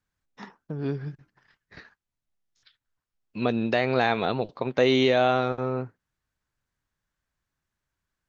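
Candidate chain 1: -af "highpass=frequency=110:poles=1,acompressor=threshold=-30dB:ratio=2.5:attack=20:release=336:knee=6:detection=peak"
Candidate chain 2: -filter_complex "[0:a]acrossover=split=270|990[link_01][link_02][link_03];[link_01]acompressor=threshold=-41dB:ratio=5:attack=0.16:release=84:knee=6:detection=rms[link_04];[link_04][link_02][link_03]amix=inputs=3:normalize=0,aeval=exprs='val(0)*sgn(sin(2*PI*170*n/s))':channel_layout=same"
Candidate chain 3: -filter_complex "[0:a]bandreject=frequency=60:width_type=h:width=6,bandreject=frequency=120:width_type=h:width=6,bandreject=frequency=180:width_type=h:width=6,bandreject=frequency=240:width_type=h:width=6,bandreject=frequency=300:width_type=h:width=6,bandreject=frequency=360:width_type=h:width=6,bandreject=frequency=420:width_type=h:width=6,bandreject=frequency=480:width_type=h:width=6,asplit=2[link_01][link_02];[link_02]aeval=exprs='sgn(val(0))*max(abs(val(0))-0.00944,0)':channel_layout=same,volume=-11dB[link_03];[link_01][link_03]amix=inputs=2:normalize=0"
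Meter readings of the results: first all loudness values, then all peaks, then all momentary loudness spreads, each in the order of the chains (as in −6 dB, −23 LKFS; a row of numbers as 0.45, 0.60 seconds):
−32.0, −26.0, −23.5 LKFS; −13.0, −11.0, −6.5 dBFS; 19, 15, 17 LU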